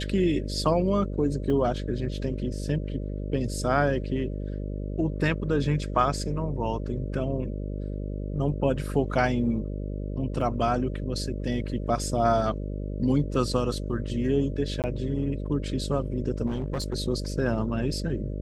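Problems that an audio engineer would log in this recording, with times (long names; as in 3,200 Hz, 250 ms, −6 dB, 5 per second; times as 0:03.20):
mains buzz 50 Hz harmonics 12 −32 dBFS
0:01.50: drop-out 2.2 ms
0:10.41: drop-out 4 ms
0:14.82–0:14.84: drop-out 18 ms
0:16.46–0:16.95: clipping −25 dBFS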